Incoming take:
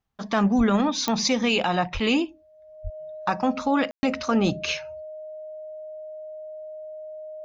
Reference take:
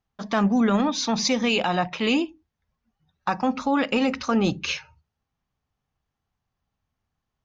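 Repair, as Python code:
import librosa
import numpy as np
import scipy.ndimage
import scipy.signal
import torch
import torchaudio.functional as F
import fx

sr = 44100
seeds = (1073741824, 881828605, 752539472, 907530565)

y = fx.fix_declick_ar(x, sr, threshold=10.0)
y = fx.notch(y, sr, hz=620.0, q=30.0)
y = fx.highpass(y, sr, hz=140.0, slope=24, at=(0.57, 0.69), fade=0.02)
y = fx.highpass(y, sr, hz=140.0, slope=24, at=(1.93, 2.05), fade=0.02)
y = fx.highpass(y, sr, hz=140.0, slope=24, at=(2.83, 2.95), fade=0.02)
y = fx.fix_ambience(y, sr, seeds[0], print_start_s=2.27, print_end_s=2.77, start_s=3.91, end_s=4.03)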